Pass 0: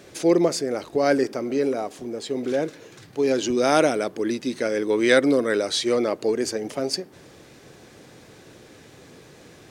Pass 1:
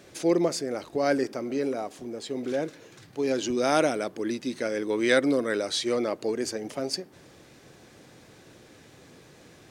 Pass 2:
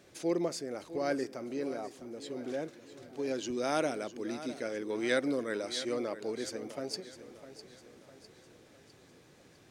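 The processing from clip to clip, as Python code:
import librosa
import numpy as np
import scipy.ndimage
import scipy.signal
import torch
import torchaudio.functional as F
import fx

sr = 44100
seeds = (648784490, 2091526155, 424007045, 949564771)

y1 = fx.peak_eq(x, sr, hz=430.0, db=-2.5, octaves=0.36)
y1 = y1 * 10.0 ** (-4.0 / 20.0)
y2 = fx.echo_feedback(y1, sr, ms=654, feedback_pct=48, wet_db=-14.0)
y2 = y2 * 10.0 ** (-8.0 / 20.0)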